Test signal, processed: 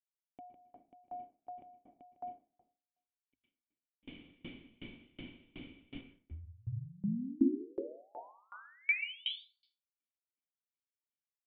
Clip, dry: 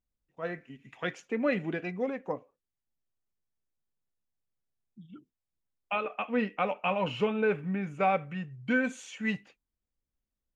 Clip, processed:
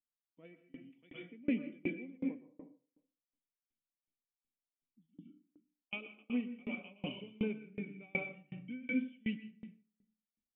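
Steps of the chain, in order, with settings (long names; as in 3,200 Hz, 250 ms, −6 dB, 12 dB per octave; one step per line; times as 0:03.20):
low-shelf EQ 310 Hz −10.5 dB
mains-hum notches 50/100 Hz
automatic gain control gain up to 9 dB
formant resonators in series i
dense smooth reverb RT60 0.86 s, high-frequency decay 0.55×, pre-delay 105 ms, DRR 0 dB
tremolo with a ramp in dB decaying 2.7 Hz, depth 30 dB
level +2 dB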